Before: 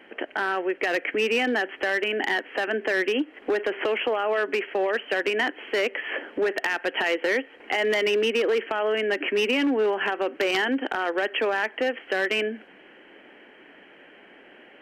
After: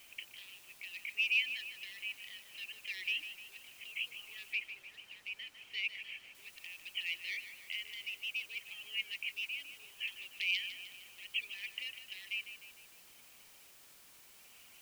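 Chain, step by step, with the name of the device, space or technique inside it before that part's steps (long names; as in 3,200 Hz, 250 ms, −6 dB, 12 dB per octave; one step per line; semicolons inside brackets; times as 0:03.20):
elliptic high-pass filter 2,400 Hz, stop band 40 dB
reverb reduction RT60 1.8 s
shortwave radio (band-pass filter 340–3,000 Hz; amplitude tremolo 0.68 Hz, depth 72%; white noise bed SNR 17 dB)
0:04.53–0:06.35: high-shelf EQ 6,600 Hz −12 dB
feedback echo with a high-pass in the loop 152 ms, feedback 52%, level −11 dB
level +1 dB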